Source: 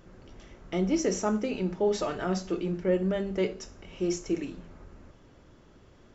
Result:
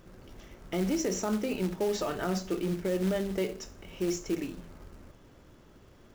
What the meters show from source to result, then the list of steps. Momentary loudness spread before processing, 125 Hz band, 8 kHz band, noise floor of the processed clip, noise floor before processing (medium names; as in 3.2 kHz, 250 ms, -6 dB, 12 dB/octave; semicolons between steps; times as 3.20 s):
8 LU, -1.5 dB, no reading, -56 dBFS, -56 dBFS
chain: peak limiter -21.5 dBFS, peak gain reduction 7.5 dB; short-mantissa float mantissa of 2-bit